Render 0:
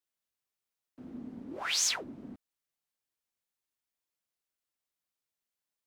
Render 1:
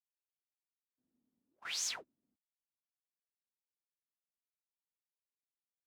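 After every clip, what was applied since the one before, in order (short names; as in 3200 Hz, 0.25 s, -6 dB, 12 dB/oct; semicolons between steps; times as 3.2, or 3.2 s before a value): gate -36 dBFS, range -32 dB; gain -8.5 dB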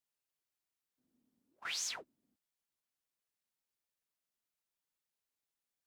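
compressor 2.5:1, threshold -42 dBFS, peak gain reduction 6 dB; gain +4 dB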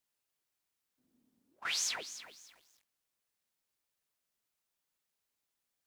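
lo-fi delay 0.293 s, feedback 35%, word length 10-bit, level -12 dB; gain +4.5 dB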